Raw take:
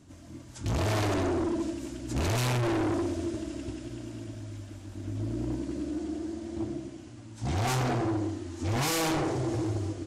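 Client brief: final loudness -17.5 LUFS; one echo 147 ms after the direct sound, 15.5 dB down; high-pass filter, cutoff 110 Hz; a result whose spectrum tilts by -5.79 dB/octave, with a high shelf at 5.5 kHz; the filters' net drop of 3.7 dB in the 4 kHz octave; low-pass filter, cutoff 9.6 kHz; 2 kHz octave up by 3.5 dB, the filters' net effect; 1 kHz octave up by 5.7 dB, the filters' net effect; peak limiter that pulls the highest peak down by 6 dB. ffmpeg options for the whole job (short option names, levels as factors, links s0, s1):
-af "highpass=110,lowpass=9600,equalizer=f=1000:t=o:g=7,equalizer=f=2000:t=o:g=4,equalizer=f=4000:t=o:g=-3,highshelf=f=5500:g=-9,alimiter=limit=0.075:level=0:latency=1,aecho=1:1:147:0.168,volume=6.31"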